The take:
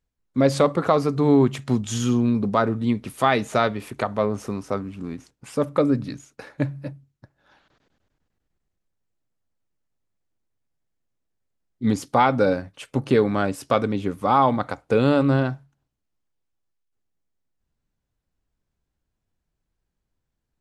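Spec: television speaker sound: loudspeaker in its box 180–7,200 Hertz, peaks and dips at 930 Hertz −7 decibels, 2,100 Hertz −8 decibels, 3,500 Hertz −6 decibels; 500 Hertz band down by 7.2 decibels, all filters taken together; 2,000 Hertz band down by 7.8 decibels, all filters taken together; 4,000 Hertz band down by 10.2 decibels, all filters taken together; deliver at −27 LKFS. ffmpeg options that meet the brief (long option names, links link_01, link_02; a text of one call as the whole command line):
ffmpeg -i in.wav -af "highpass=frequency=180:width=0.5412,highpass=frequency=180:width=1.3066,equalizer=frequency=930:width_type=q:width=4:gain=-7,equalizer=frequency=2100:width_type=q:width=4:gain=-8,equalizer=frequency=3500:width_type=q:width=4:gain=-6,lowpass=frequency=7200:width=0.5412,lowpass=frequency=7200:width=1.3066,equalizer=frequency=500:width_type=o:gain=-8,equalizer=frequency=2000:width_type=o:gain=-6,equalizer=frequency=4000:width_type=o:gain=-6,volume=0.5dB" out.wav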